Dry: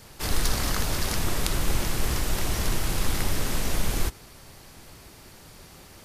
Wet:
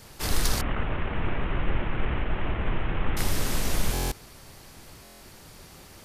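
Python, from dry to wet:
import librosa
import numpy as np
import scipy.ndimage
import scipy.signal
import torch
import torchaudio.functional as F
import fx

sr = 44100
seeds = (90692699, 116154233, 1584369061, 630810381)

y = fx.cvsd(x, sr, bps=16000, at=(0.61, 3.17))
y = fx.buffer_glitch(y, sr, at_s=(3.93, 5.03), block=1024, repeats=7)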